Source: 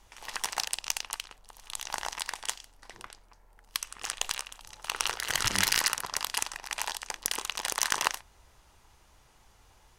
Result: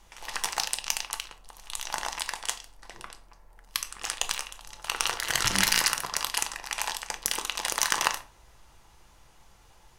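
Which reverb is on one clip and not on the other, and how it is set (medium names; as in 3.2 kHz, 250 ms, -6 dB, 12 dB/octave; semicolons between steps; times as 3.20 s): simulated room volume 310 m³, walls furnished, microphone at 0.76 m; trim +2 dB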